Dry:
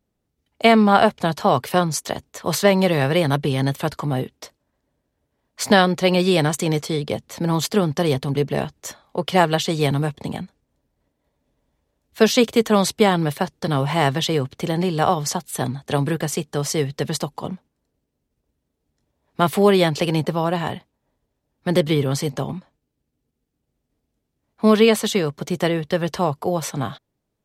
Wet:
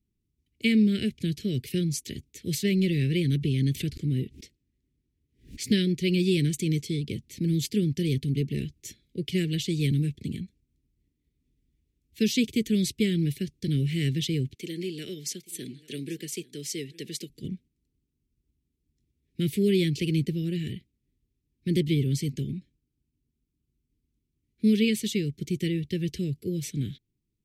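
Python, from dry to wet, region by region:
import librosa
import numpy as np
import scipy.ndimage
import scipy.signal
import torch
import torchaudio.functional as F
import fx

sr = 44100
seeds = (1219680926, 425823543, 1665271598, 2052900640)

y = fx.chain(x, sr, fx.high_shelf(hz=11000.0, db=-9.0),
    fx.pre_swell(db_per_s=150.0), at=(2.76, 5.64))
y = fx.chain(y, sr, fx.highpass(hz=340.0, slope=12),
    fx.echo_single(ms=836, db=-21.0), at=(14.55, 17.3))
y = scipy.signal.sosfilt(scipy.signal.ellip(3, 1.0, 80, [370.0, 2200.0], 'bandstop', fs=sr, output='sos'), y)
y = fx.low_shelf(y, sr, hz=200.0, db=8.5)
y = y * librosa.db_to_amplitude(-7.5)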